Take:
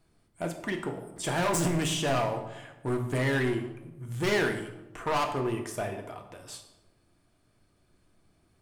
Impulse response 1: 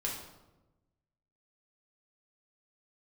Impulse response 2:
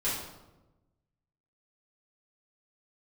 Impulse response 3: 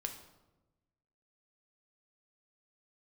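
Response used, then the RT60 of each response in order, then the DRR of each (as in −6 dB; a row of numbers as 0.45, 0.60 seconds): 3; 1.0, 1.0, 1.1 seconds; −3.5, −11.0, 4.0 decibels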